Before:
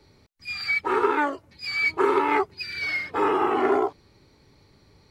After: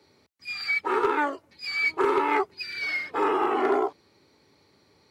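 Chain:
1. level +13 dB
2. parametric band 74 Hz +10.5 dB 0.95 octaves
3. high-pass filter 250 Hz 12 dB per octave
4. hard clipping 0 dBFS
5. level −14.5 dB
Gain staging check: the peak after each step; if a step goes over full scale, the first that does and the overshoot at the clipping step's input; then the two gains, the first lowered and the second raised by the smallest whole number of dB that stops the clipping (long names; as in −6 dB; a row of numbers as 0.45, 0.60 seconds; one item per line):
+4.0, +4.5, +5.5, 0.0, −14.5 dBFS
step 1, 5.5 dB
step 1 +7 dB, step 5 −8.5 dB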